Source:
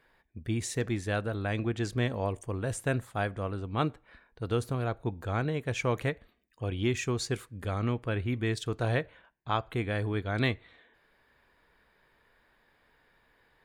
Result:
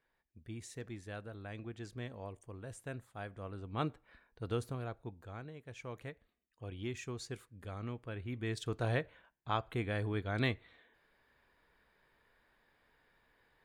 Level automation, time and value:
0:03.16 −14.5 dB
0:03.85 −6.5 dB
0:04.54 −6.5 dB
0:05.55 −18.5 dB
0:06.69 −12 dB
0:08.17 −12 dB
0:08.69 −5 dB

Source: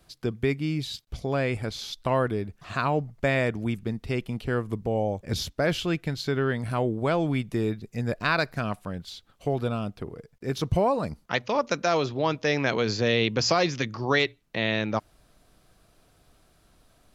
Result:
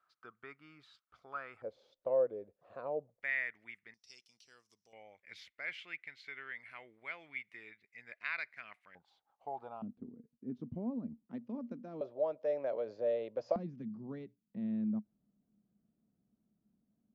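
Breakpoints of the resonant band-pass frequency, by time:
resonant band-pass, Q 8.8
1,300 Hz
from 0:01.62 530 Hz
from 0:03.22 2,000 Hz
from 0:03.94 5,600 Hz
from 0:04.93 2,100 Hz
from 0:08.95 840 Hz
from 0:09.82 240 Hz
from 0:12.01 580 Hz
from 0:13.56 210 Hz

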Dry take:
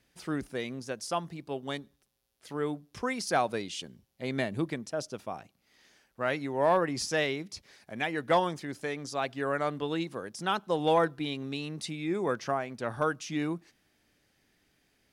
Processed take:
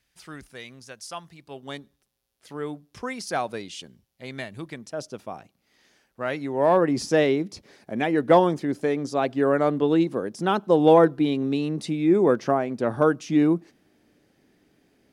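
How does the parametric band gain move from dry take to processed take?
parametric band 310 Hz 2.9 octaves
0:01.34 −10 dB
0:01.74 0 dB
0:03.81 0 dB
0:04.55 −8 dB
0:05.02 +3 dB
0:06.32 +3 dB
0:07.05 +13 dB

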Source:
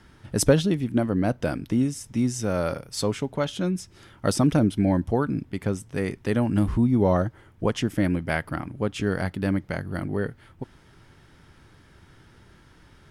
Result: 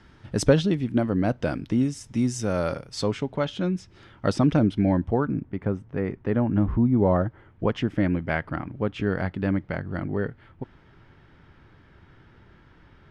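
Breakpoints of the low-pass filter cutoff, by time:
0:01.68 5,600 Hz
0:02.36 9,200 Hz
0:03.42 4,100 Hz
0:04.77 4,100 Hz
0:05.43 1,600 Hz
0:06.87 1,600 Hz
0:07.64 2,900 Hz

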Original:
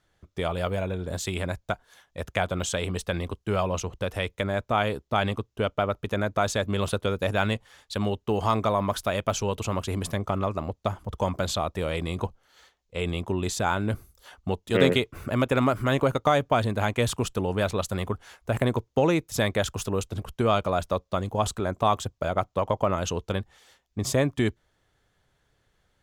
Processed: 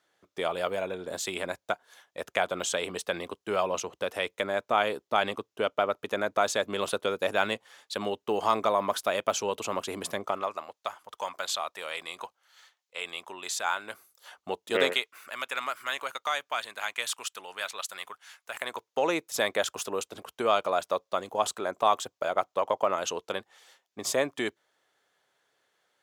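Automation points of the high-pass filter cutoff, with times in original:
0:10.18 350 Hz
0:10.66 980 Hz
0:13.82 980 Hz
0:14.71 380 Hz
0:15.09 1,400 Hz
0:18.52 1,400 Hz
0:19.16 450 Hz

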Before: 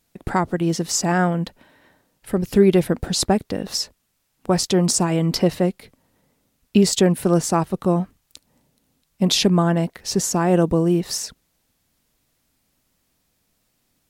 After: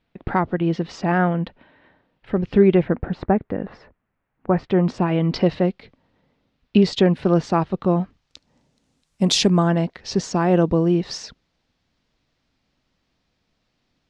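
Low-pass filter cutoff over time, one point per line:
low-pass filter 24 dB per octave
0:02.59 3,400 Hz
0:03.11 2,000 Hz
0:04.51 2,000 Hz
0:05.35 4,200 Hz
0:07.88 4,200 Hz
0:09.26 10,000 Hz
0:09.84 5,000 Hz

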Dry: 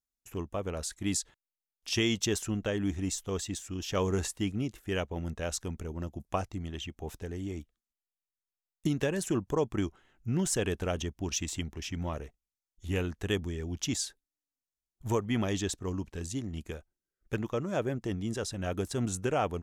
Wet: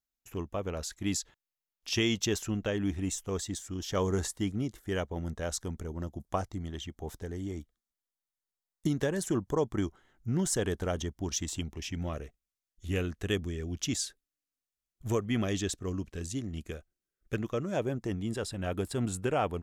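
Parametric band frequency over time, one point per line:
parametric band −12 dB 0.21 octaves
0:02.82 8,900 Hz
0:03.41 2,600 Hz
0:11.42 2,600 Hz
0:12.12 890 Hz
0:17.66 890 Hz
0:18.27 6,100 Hz

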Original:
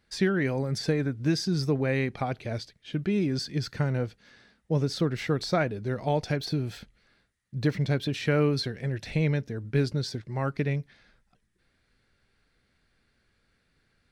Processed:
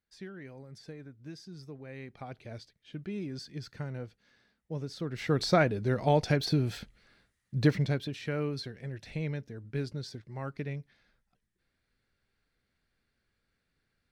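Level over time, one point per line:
0:01.84 −19.5 dB
0:02.39 −11 dB
0:05.00 −11 dB
0:05.40 +1.5 dB
0:07.68 +1.5 dB
0:08.16 −9 dB

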